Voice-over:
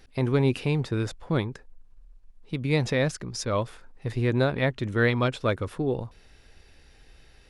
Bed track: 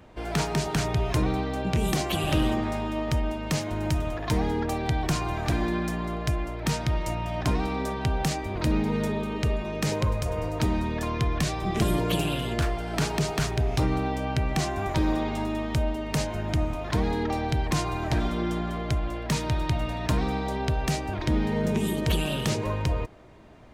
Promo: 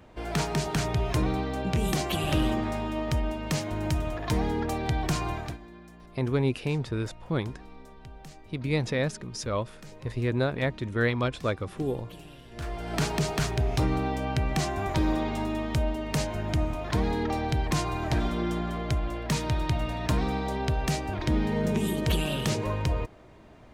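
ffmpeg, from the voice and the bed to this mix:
-filter_complex "[0:a]adelay=6000,volume=-3dB[a];[1:a]volume=18dB,afade=t=out:st=5.3:d=0.28:silence=0.112202,afade=t=in:st=12.51:d=0.43:silence=0.105925[b];[a][b]amix=inputs=2:normalize=0"

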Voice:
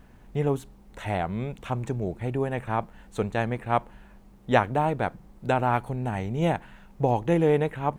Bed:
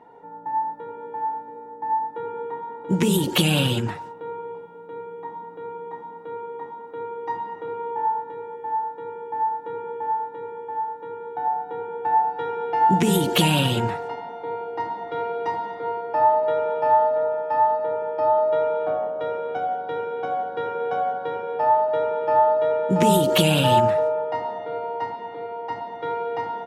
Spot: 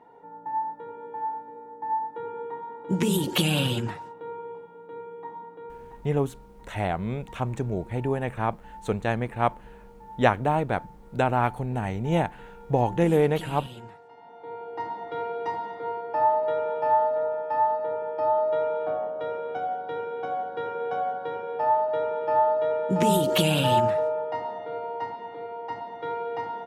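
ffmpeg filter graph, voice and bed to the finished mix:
-filter_complex "[0:a]adelay=5700,volume=0.5dB[a];[1:a]volume=12dB,afade=t=out:st=5.41:d=0.75:silence=0.158489,afade=t=in:st=14.11:d=0.79:silence=0.158489[b];[a][b]amix=inputs=2:normalize=0"

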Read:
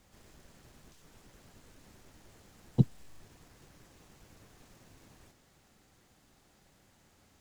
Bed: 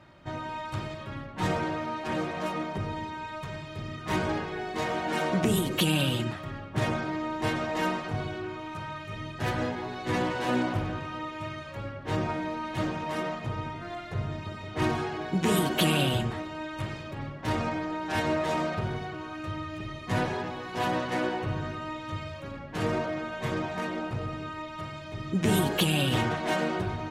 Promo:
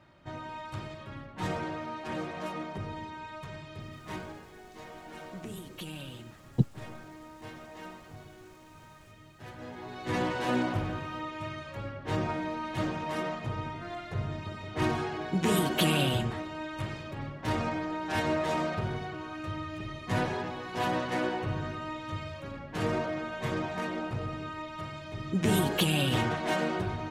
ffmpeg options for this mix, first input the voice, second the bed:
-filter_complex "[0:a]adelay=3800,volume=-0.5dB[a];[1:a]volume=10dB,afade=t=out:st=3.74:d=0.62:silence=0.266073,afade=t=in:st=9.58:d=0.65:silence=0.177828[b];[a][b]amix=inputs=2:normalize=0"

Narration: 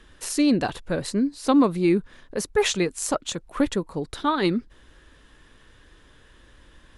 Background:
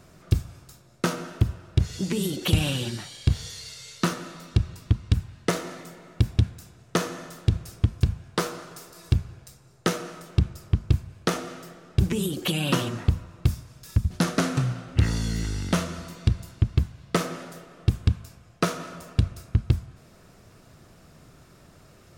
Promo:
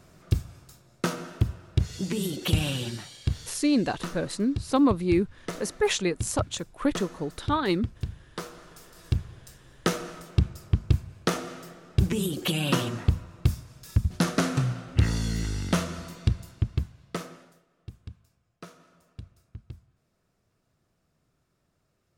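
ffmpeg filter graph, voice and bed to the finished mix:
-filter_complex "[0:a]adelay=3250,volume=-3dB[a];[1:a]volume=7dB,afade=t=out:st=2.93:d=0.75:silence=0.398107,afade=t=in:st=8.5:d=1.12:silence=0.334965,afade=t=out:st=16.07:d=1.56:silence=0.1[b];[a][b]amix=inputs=2:normalize=0"

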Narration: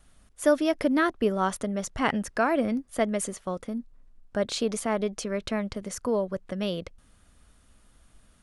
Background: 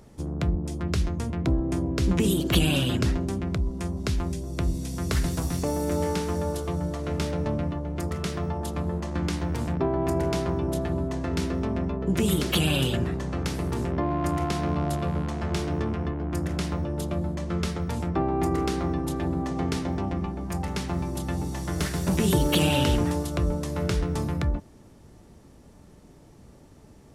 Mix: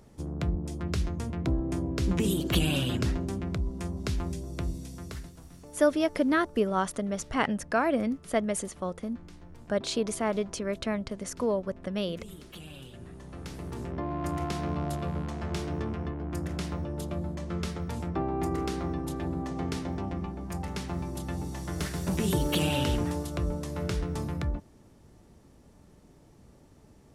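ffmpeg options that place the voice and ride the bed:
-filter_complex "[0:a]adelay=5350,volume=-1.5dB[a];[1:a]volume=13dB,afade=t=out:st=4.41:d=0.92:silence=0.125893,afade=t=in:st=12.93:d=1.48:silence=0.141254[b];[a][b]amix=inputs=2:normalize=0"

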